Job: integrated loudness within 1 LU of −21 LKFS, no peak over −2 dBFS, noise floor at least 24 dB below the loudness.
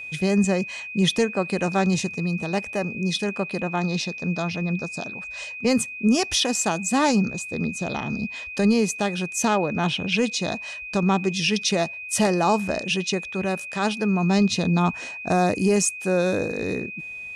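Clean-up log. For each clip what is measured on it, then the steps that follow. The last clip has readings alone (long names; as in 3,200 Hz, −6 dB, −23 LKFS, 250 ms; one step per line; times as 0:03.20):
interfering tone 2,500 Hz; level of the tone −33 dBFS; integrated loudness −23.5 LKFS; sample peak −11.0 dBFS; target loudness −21.0 LKFS
→ notch filter 2,500 Hz, Q 30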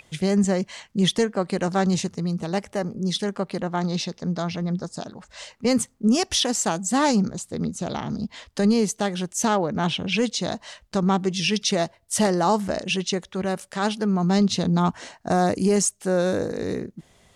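interfering tone none found; integrated loudness −24.0 LKFS; sample peak −11.5 dBFS; target loudness −21.0 LKFS
→ level +3 dB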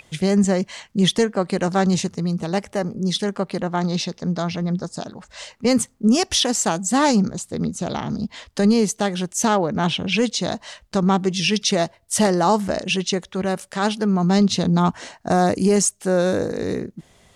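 integrated loudness −21.0 LKFS; sample peak −8.5 dBFS; background noise floor −56 dBFS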